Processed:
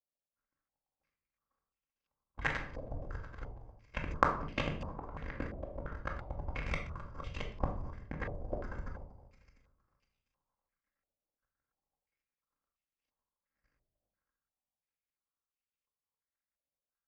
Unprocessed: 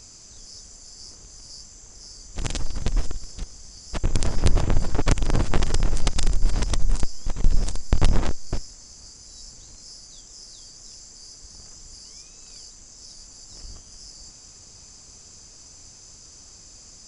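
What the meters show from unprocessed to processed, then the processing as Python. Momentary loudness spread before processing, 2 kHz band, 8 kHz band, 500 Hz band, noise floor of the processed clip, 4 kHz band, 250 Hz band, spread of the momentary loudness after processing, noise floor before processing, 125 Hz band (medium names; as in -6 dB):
19 LU, -2.5 dB, -32.0 dB, -8.0 dB, under -85 dBFS, -17.5 dB, -12.5 dB, 14 LU, -47 dBFS, -15.5 dB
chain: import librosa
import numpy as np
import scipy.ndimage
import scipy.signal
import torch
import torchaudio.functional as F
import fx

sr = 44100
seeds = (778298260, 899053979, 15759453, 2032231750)

p1 = x + 0.35 * np.pad(x, (int(1.9 * sr / 1000.0), 0))[:len(x)]
p2 = p1 + fx.echo_heads(p1, sr, ms=232, heads='all three', feedback_pct=52, wet_db=-16.5, dry=0)
p3 = fx.over_compress(p2, sr, threshold_db=-19.0, ratio=-1.0)
p4 = fx.peak_eq(p3, sr, hz=120.0, db=-4.0, octaves=0.99)
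p5 = fx.power_curve(p4, sr, exponent=3.0)
p6 = fx.highpass(p5, sr, hz=67.0, slope=6)
p7 = fx.room_shoebox(p6, sr, seeds[0], volume_m3=770.0, walls='furnished', distance_m=2.2)
p8 = fx.filter_held_lowpass(p7, sr, hz=2.9, low_hz=660.0, high_hz=2800.0)
y = p8 * librosa.db_to_amplitude(5.5)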